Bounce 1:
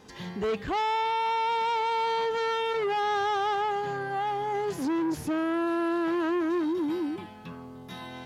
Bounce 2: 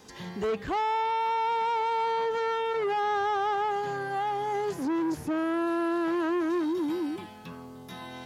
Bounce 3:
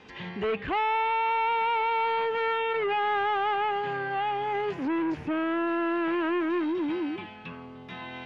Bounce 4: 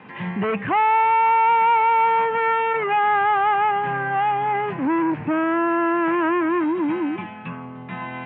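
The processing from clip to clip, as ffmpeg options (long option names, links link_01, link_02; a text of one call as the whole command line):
ffmpeg -i in.wav -filter_complex "[0:a]bass=frequency=250:gain=-2,treble=frequency=4000:gain=7,acrossover=split=570|2300[link_01][link_02][link_03];[link_03]acompressor=threshold=-49dB:ratio=6[link_04];[link_01][link_02][link_04]amix=inputs=3:normalize=0" out.wav
ffmpeg -i in.wav -filter_complex "[0:a]asplit=2[link_01][link_02];[link_02]aeval=exprs='clip(val(0),-1,0.0376)':channel_layout=same,volume=-8.5dB[link_03];[link_01][link_03]amix=inputs=2:normalize=0,lowpass=frequency=2600:width_type=q:width=2.8,volume=-2.5dB" out.wav
ffmpeg -i in.wav -af "highpass=frequency=110:width=0.5412,highpass=frequency=110:width=1.3066,equalizer=frequency=120:width_type=q:width=4:gain=6,equalizer=frequency=190:width_type=q:width=4:gain=5,equalizer=frequency=410:width_type=q:width=4:gain=-6,equalizer=frequency=1000:width_type=q:width=4:gain=4,lowpass=frequency=2500:width=0.5412,lowpass=frequency=2500:width=1.3066,volume=7.5dB" out.wav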